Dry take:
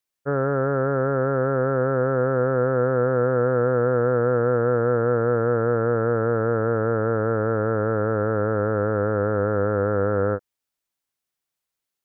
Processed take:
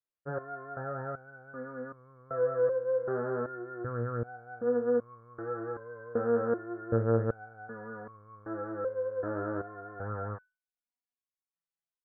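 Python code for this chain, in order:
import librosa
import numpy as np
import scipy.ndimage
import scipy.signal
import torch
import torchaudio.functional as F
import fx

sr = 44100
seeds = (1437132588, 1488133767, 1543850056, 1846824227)

y = scipy.signal.sosfilt(scipy.signal.butter(2, 1900.0, 'lowpass', fs=sr, output='sos'), x)
y = fx.resonator_held(y, sr, hz=2.6, low_hz=78.0, high_hz=1100.0)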